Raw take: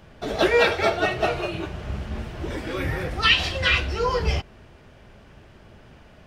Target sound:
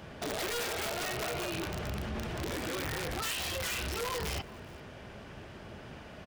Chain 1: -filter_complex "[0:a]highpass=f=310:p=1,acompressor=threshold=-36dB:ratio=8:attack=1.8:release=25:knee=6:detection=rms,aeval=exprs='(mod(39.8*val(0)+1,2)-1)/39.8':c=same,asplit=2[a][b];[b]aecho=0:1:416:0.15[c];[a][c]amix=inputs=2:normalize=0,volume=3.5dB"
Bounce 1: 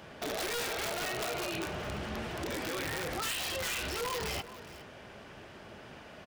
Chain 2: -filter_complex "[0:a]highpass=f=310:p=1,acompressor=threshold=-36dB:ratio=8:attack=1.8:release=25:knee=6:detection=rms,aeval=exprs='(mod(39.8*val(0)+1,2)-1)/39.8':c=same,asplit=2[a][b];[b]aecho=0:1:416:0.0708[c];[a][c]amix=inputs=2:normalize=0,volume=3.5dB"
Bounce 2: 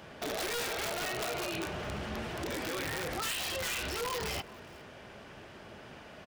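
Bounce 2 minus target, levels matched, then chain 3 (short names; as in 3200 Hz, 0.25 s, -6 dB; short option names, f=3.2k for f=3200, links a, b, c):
125 Hz band -4.0 dB
-filter_complex "[0:a]highpass=f=100:p=1,acompressor=threshold=-36dB:ratio=8:attack=1.8:release=25:knee=6:detection=rms,aeval=exprs='(mod(39.8*val(0)+1,2)-1)/39.8':c=same,asplit=2[a][b];[b]aecho=0:1:416:0.0708[c];[a][c]amix=inputs=2:normalize=0,volume=3.5dB"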